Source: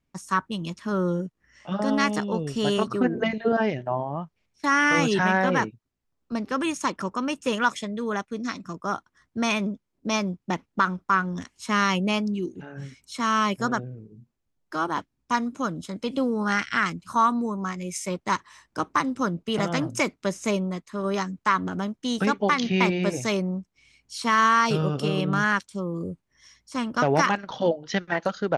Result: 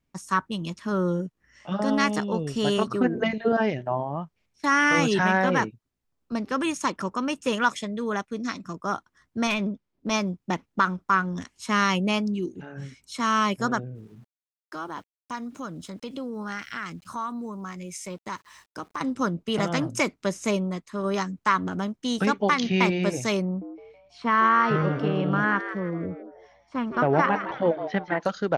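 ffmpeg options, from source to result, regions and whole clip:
-filter_complex "[0:a]asettb=1/sr,asplit=3[a][b][c];[a]atrim=end=9.474[d];[b]atrim=start=9.47:end=10.11,asetpts=PTS-STARTPTS,afade=t=in:d=0.004:c=qsin,afade=t=out:st=0.636:d=0.004:c=qsin,lowpass=5k,aeval=exprs='clip(val(0),-1,0.0596)':c=same[e];[c]atrim=start=10.106[f];[d][e]acrossfade=d=0.004:c1=hsin:c2=qsin[g];[g][f]acrossfade=d=0.004:c1=qsin:c2=hsin,asettb=1/sr,asplit=3[h][i][j];[h]atrim=end=13.954[k];[i]atrim=start=13.95:end=19.01,asetpts=PTS-STARTPTS,afade=t=in:d=0.004:c=qsin,afade=t=out:st=5.056:d=0.004:c=qsin,acompressor=threshold=-37dB:ratio=2:attack=3.2:release=140:knee=1:detection=peak,aeval=exprs='val(0)*gte(abs(val(0)),0.00141)':c=same[l];[j]atrim=start=19.006[m];[k][l]acrossfade=d=0.004:c1=hsin:c2=qsin[n];[n][m]acrossfade=d=0.004:c1=qsin:c2=hsin,asettb=1/sr,asplit=3[o][p][q];[o]atrim=end=23.454[r];[p]atrim=start=23.45:end=28.22,asetpts=PTS-STARTPTS,afade=t=in:d=0.004:c=qsin,afade=t=out:st=4.766:d=0.004:c=qsin,lowpass=2k,asplit=5[s][t][u][v][w];[t]adelay=162,afreqshift=130,volume=-10.5dB[x];[u]adelay=324,afreqshift=260,volume=-19.4dB[y];[v]adelay=486,afreqshift=390,volume=-28.2dB[z];[w]adelay=648,afreqshift=520,volume=-37.1dB[aa];[s][x][y][z][aa]amix=inputs=5:normalize=0,atrim=end_sample=210357[ab];[q]atrim=start=28.216[ac];[r][ab]acrossfade=d=0.004:c1=hsin:c2=qsin[ad];[ad][ac]acrossfade=d=0.004:c1=qsin:c2=hsin"

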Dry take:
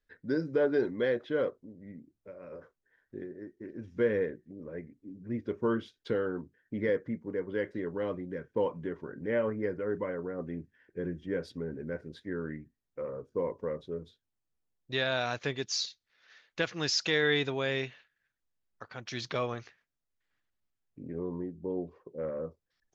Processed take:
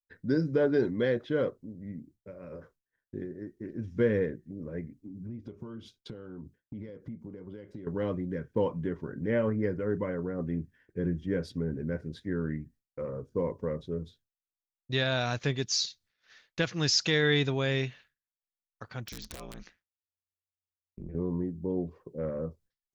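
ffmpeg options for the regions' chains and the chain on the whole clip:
-filter_complex "[0:a]asettb=1/sr,asplit=3[a][b][c];[a]atrim=end=4.984[d];[b]atrim=start=4.98:end=7.87,asetpts=PTS-STARTPTS,afade=t=in:d=0.004:c=qsin,afade=t=out:st=2.886:d=0.004:c=qsin,bandreject=f=470:w=14,acompressor=threshold=-44dB:ratio=6:attack=3.2:release=140:knee=1:detection=peak,equalizer=f=1.8k:w=3.6:g=-10[e];[c]atrim=start=7.866[f];[d][e]acrossfade=d=0.004:c1=hsin:c2=qsin[g];[g][f]acrossfade=d=0.004:c1=qsin:c2=hsin,asettb=1/sr,asplit=3[h][i][j];[h]atrim=end=19.084[k];[i]atrim=start=19.08:end=21.15,asetpts=PTS-STARTPTS,afade=t=in:d=0.004:c=qsin,afade=t=out:st=2.066:d=0.004:c=qsin,acompressor=threshold=-39dB:ratio=6:attack=3.2:release=140:knee=1:detection=peak,aeval=exprs='(mod(47.3*val(0)+1,2)-1)/47.3':c=same,aeval=exprs='val(0)*sin(2*PI*88*n/s)':c=same[l];[j]atrim=start=21.146[m];[k][l]acrossfade=d=0.004:c1=hsin:c2=qsin[n];[n][m]acrossfade=d=0.004:c1=qsin:c2=hsin,agate=range=-33dB:threshold=-59dB:ratio=3:detection=peak,bass=f=250:g=10,treble=f=4k:g=5"

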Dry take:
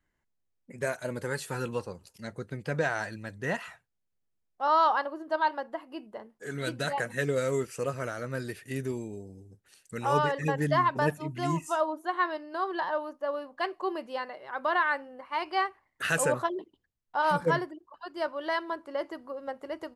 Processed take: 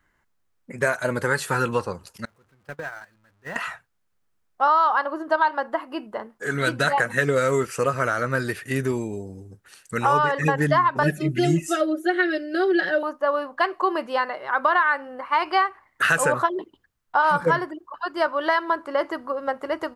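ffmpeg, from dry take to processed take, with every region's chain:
-filter_complex "[0:a]asettb=1/sr,asplit=3[a][b][c];[a]atrim=end=2.254[d];[b]atrim=start=2.25:end=3.56,asetpts=PTS-STARTPTS,afade=t=in:d=0.004:c=qsin,afade=t=out:st=1.306:d=0.004:c=qsin,aeval=exprs='val(0)+0.5*0.0211*sgn(val(0))':c=same,agate=range=-37dB:threshold=-27dB:ratio=16:release=100:detection=peak,acompressor=threshold=-42dB:ratio=6:attack=3.2:release=140:knee=1:detection=peak[e];[c]atrim=start=3.556[f];[d][e]acrossfade=d=0.004:c1=hsin:c2=qsin[g];[g][f]acrossfade=d=0.004:c1=qsin:c2=hsin,asettb=1/sr,asplit=3[h][i][j];[h]atrim=end=11.034[k];[i]atrim=start=11.03:end=13.03,asetpts=PTS-STARTPTS,afade=t=in:d=0.004:c=qsin,afade=t=out:st=1.996:d=0.004:c=qsin,asuperstop=centerf=1000:order=4:qfactor=0.97,equalizer=f=290:t=o:w=0.76:g=6.5,aecho=1:1:5.4:0.93,atrim=end_sample=88200[l];[j]atrim=start=13.026[m];[k][l]acrossfade=d=0.004:c1=hsin:c2=qsin[n];[n][m]acrossfade=d=0.004:c1=qsin:c2=hsin,equalizer=f=1.3k:w=1.2:g=8,acompressor=threshold=-25dB:ratio=5,volume=8.5dB"

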